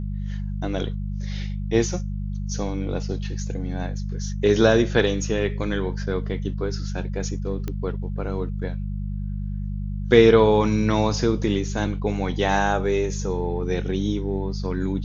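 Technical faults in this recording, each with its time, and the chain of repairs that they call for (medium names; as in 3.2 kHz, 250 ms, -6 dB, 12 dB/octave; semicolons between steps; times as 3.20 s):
hum 50 Hz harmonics 4 -28 dBFS
7.68 s: pop -16 dBFS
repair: de-click; de-hum 50 Hz, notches 4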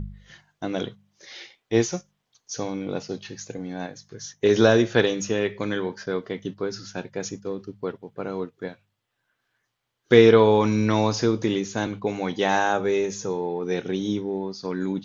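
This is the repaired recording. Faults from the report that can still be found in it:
nothing left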